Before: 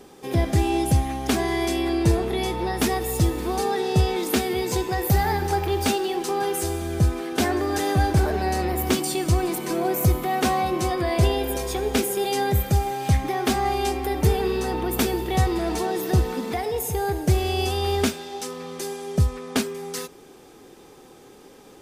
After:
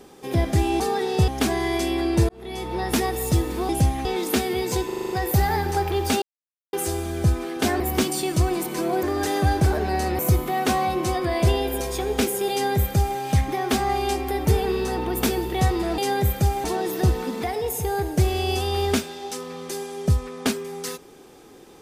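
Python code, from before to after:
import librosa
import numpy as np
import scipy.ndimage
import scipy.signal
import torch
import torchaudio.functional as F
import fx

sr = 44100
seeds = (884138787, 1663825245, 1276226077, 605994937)

y = fx.edit(x, sr, fx.swap(start_s=0.8, length_s=0.36, other_s=3.57, other_length_s=0.48),
    fx.fade_in_span(start_s=2.17, length_s=0.55),
    fx.stutter(start_s=4.86, slice_s=0.04, count=7),
    fx.silence(start_s=5.98, length_s=0.51),
    fx.move(start_s=7.56, length_s=1.16, to_s=9.95),
    fx.duplicate(start_s=12.28, length_s=0.66, to_s=15.74), tone=tone)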